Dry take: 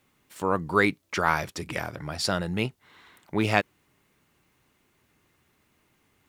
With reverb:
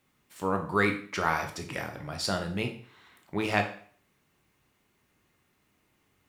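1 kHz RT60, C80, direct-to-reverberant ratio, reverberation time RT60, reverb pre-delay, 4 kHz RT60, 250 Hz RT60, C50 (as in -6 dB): 0.50 s, 14.0 dB, 4.0 dB, 0.50 s, 7 ms, 0.45 s, 0.45 s, 9.5 dB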